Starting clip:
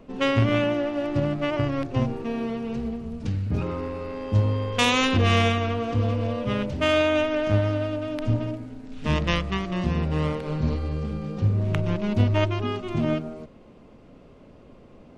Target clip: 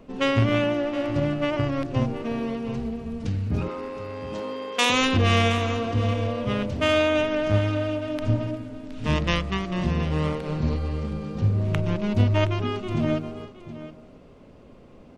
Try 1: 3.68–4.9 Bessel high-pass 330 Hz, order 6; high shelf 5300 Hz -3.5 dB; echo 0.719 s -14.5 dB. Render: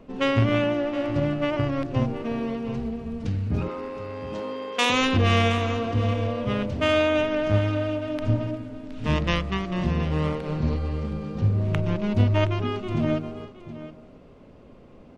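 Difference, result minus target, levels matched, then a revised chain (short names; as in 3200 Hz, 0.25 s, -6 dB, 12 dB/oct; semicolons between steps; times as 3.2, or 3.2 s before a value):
8000 Hz band -3.5 dB
3.68–4.9 Bessel high-pass 330 Hz, order 6; high shelf 5300 Hz +2.5 dB; echo 0.719 s -14.5 dB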